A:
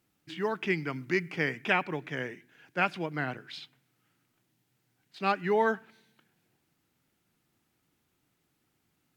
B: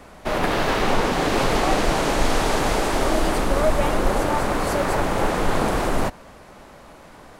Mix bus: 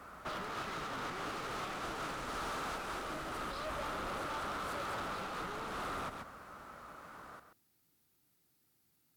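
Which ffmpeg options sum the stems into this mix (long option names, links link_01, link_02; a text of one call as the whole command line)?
ffmpeg -i stem1.wav -i stem2.wav -filter_complex "[0:a]acompressor=threshold=-32dB:ratio=6,aexciter=amount=1.3:drive=8.8:freq=4000,aeval=exprs='(tanh(31.6*val(0)+0.4)-tanh(0.4))/31.6':channel_layout=same,volume=-3.5dB[link_01];[1:a]highpass=45,equalizer=frequency=1300:width_type=o:width=0.51:gain=14.5,asoftclip=type=hard:threshold=-20.5dB,volume=-11.5dB,asplit=2[link_02][link_03];[link_03]volume=-9dB,aecho=0:1:133:1[link_04];[link_01][link_02][link_04]amix=inputs=3:normalize=0,alimiter=level_in=11dB:limit=-24dB:level=0:latency=1:release=154,volume=-11dB" out.wav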